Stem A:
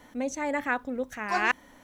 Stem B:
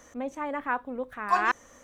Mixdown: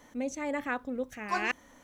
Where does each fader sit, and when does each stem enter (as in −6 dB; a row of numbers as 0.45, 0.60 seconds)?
−4.0, −10.5 decibels; 0.00, 0.00 seconds